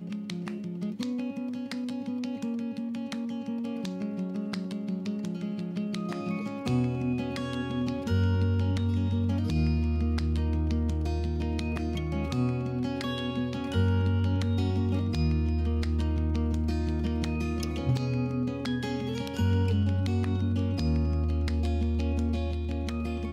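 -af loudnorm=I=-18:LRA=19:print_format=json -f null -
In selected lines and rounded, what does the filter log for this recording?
"input_i" : "-29.8",
"input_tp" : "-15.6",
"input_lra" : "5.4",
"input_thresh" : "-39.8",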